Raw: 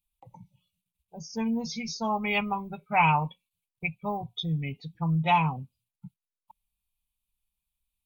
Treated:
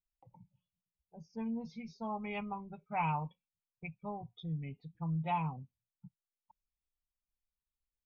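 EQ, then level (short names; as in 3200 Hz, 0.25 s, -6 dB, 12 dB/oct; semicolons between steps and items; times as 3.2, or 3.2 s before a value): tape spacing loss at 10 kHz 32 dB; -8.5 dB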